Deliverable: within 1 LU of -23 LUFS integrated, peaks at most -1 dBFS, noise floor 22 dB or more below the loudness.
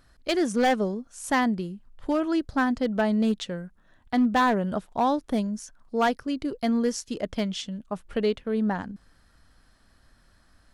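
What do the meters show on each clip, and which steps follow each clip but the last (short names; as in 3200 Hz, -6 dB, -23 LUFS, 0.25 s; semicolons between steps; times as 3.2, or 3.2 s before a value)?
clipped 1.0%; flat tops at -16.5 dBFS; loudness -26.5 LUFS; peak -16.5 dBFS; loudness target -23.0 LUFS
-> clip repair -16.5 dBFS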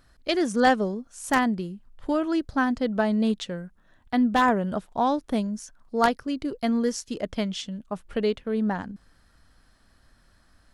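clipped 0.0%; loudness -26.0 LUFS; peak -7.5 dBFS; loudness target -23.0 LUFS
-> gain +3 dB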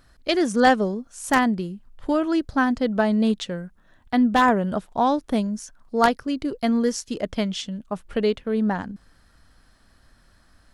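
loudness -23.0 LUFS; peak -4.5 dBFS; noise floor -58 dBFS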